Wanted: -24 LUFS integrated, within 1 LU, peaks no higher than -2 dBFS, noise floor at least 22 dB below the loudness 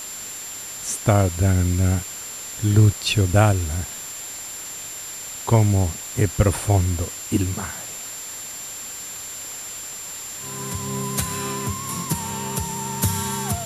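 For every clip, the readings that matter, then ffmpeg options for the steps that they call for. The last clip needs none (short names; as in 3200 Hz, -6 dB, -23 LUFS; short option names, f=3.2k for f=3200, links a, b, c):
steady tone 7300 Hz; tone level -33 dBFS; noise floor -34 dBFS; noise floor target -46 dBFS; loudness -23.5 LUFS; peak -3.5 dBFS; loudness target -24.0 LUFS
-> -af "bandreject=f=7.3k:w=30"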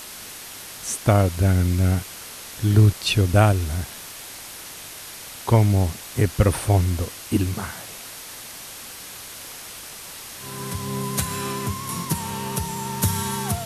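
steady tone none; noise floor -38 dBFS; noise floor target -45 dBFS
-> -af "afftdn=nr=7:nf=-38"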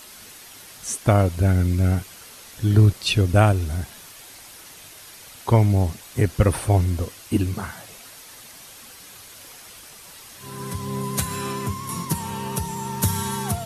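noise floor -44 dBFS; loudness -22.0 LUFS; peak -3.5 dBFS; loudness target -24.0 LUFS
-> -af "volume=-2dB"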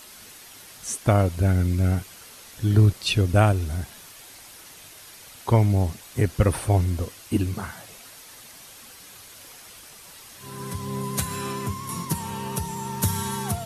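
loudness -24.0 LUFS; peak -5.5 dBFS; noise floor -46 dBFS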